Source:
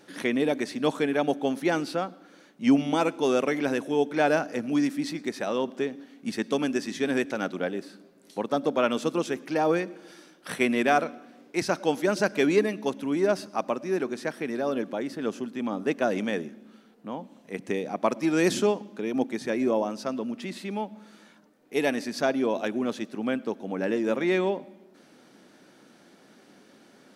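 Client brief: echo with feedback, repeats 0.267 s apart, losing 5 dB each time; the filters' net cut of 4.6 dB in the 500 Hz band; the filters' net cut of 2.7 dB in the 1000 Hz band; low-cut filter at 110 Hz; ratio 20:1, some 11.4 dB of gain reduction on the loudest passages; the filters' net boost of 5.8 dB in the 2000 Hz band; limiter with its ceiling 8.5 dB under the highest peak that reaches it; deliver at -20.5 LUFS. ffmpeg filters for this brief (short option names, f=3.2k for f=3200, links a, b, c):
-af "highpass=110,equalizer=f=500:t=o:g=-5.5,equalizer=f=1k:t=o:g=-4,equalizer=f=2k:t=o:g=9,acompressor=threshold=-27dB:ratio=20,alimiter=limit=-23dB:level=0:latency=1,aecho=1:1:267|534|801|1068|1335|1602|1869:0.562|0.315|0.176|0.0988|0.0553|0.031|0.0173,volume=13dB"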